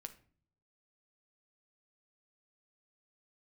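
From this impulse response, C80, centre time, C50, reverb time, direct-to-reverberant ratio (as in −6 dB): 19.0 dB, 6 ms, 14.0 dB, non-exponential decay, 7.5 dB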